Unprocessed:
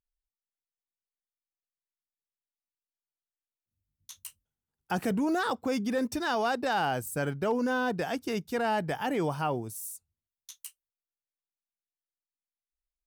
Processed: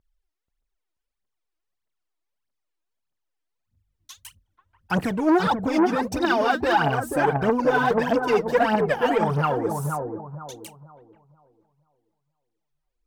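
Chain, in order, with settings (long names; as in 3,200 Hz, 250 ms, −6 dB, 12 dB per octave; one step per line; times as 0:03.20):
low-pass filter 2,800 Hz 6 dB per octave
phase shifter 1.6 Hz, delay 3.3 ms, feedback 79%
on a send: bucket-brigade delay 483 ms, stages 4,096, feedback 30%, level −5 dB
on the sum: boost into a limiter +13.5 dB
saturating transformer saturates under 540 Hz
level −7.5 dB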